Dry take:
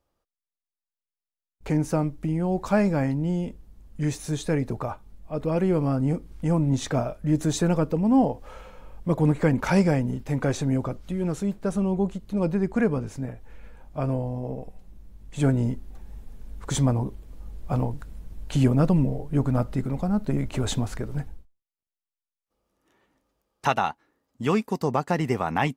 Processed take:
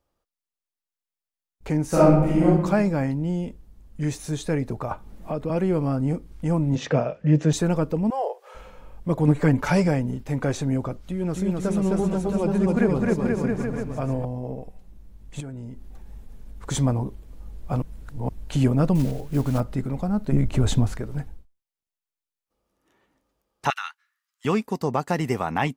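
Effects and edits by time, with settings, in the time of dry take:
0:01.88–0:02.45: thrown reverb, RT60 1 s, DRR −10 dB
0:04.91–0:05.50: multiband upward and downward compressor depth 100%
0:06.75–0:07.53: loudspeaker in its box 130–5,800 Hz, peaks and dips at 150 Hz +9 dB, 500 Hz +10 dB, 1,800 Hz +5 dB, 2,700 Hz +8 dB, 4,000 Hz −4 dB
0:08.10–0:08.55: Chebyshev high-pass filter 390 Hz, order 6
0:09.27–0:09.88: comb filter 6.9 ms, depth 57%
0:11.05–0:14.25: bouncing-ball delay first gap 260 ms, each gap 0.85×, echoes 5, each echo −2 dB
0:15.40–0:16.63: downward compressor, threshold −34 dBFS
0:17.82–0:18.29: reverse
0:18.95–0:19.62: one scale factor per block 5 bits
0:20.32–0:20.93: low-shelf EQ 240 Hz +9 dB
0:23.70–0:24.45: Butterworth high-pass 1,300 Hz
0:24.99–0:25.46: high-shelf EQ 5,700 Hz +6 dB

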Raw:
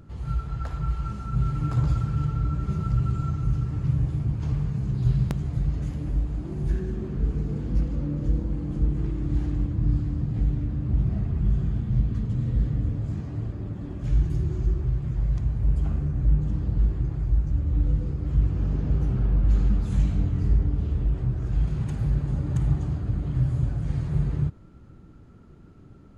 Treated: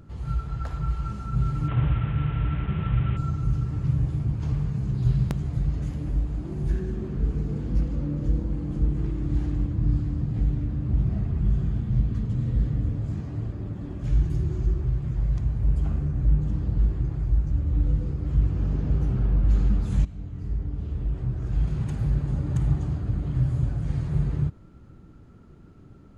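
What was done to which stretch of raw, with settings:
0:01.68–0:03.17: linear delta modulator 16 kbit/s, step −33.5 dBFS
0:20.05–0:21.70: fade in, from −16 dB

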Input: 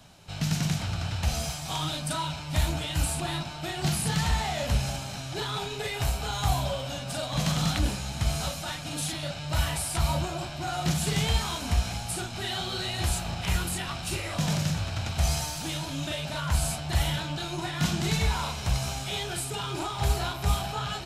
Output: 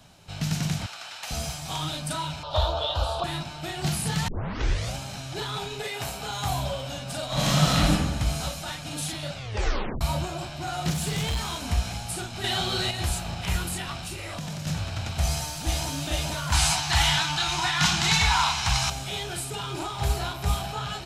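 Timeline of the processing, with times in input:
0:00.86–0:01.31: high-pass filter 870 Hz
0:02.43–0:03.24: drawn EQ curve 100 Hz 0 dB, 180 Hz −19 dB, 290 Hz −12 dB, 520 Hz +13 dB, 780 Hz +8 dB, 1,200 Hz +11 dB, 2,100 Hz −16 dB, 3,500 Hz +9 dB, 8,100 Hz −17 dB
0:04.28: tape start 0.68 s
0:05.82–0:06.52: high-pass filter 200 Hz → 98 Hz
0:07.26–0:07.91: thrown reverb, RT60 1.2 s, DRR −6.5 dB
0:09.34: tape stop 0.67 s
0:10.90–0:11.69: gain into a clipping stage and back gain 23.5 dB
0:12.44–0:12.91: clip gain +5 dB
0:13.96–0:14.67: downward compressor 5 to 1, threshold −31 dBFS
0:15.21–0:15.90: delay throw 450 ms, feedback 70%, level −1.5 dB
0:16.52–0:18.90: drawn EQ curve 130 Hz 0 dB, 380 Hz −6 dB, 540 Hz −12 dB, 800 Hz +10 dB, 6,200 Hz +10 dB, 13,000 Hz −1 dB

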